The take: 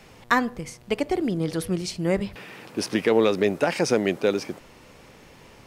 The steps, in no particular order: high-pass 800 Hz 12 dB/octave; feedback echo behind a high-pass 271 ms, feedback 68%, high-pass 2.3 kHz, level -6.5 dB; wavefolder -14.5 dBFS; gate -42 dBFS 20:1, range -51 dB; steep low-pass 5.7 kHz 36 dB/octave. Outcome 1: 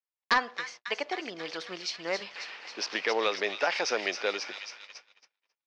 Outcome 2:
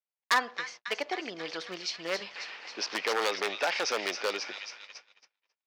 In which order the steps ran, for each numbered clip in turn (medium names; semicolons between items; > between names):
feedback echo behind a high-pass > gate > high-pass > wavefolder > steep low-pass; feedback echo behind a high-pass > gate > steep low-pass > wavefolder > high-pass